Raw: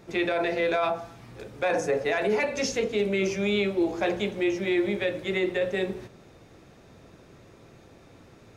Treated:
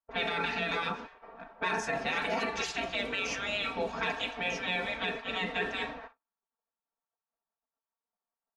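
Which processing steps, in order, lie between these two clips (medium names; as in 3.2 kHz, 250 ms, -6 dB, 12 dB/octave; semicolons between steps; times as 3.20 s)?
spectral gate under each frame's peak -15 dB weak; gate -55 dBFS, range -34 dB; level-controlled noise filter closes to 780 Hz, open at -32 dBFS; bass shelf 350 Hz +8 dB; band-stop 2.1 kHz, Q 12; comb 4.4 ms, depth 77%; peak limiter -24.5 dBFS, peak gain reduction 6.5 dB; overdrive pedal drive 17 dB, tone 2.3 kHz, clips at -2 dBFS; trim -4.5 dB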